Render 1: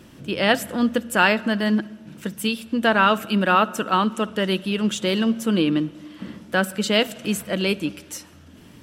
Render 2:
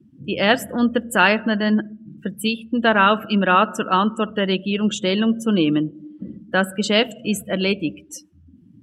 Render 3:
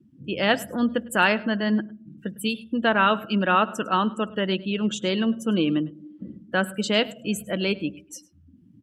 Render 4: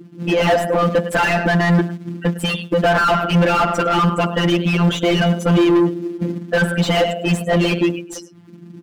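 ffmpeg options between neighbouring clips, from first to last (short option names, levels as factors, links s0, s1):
-af "afftdn=nr=31:nf=-35,volume=1.26"
-af "aecho=1:1:104:0.0794,volume=0.596"
-filter_complex "[0:a]acrusher=bits=6:mode=log:mix=0:aa=0.000001,afftfilt=real='hypot(re,im)*cos(PI*b)':imag='0':win_size=1024:overlap=0.75,asplit=2[s0][s1];[s1]highpass=f=720:p=1,volume=70.8,asoftclip=type=tanh:threshold=0.596[s2];[s0][s2]amix=inputs=2:normalize=0,lowpass=f=1000:p=1,volume=0.501"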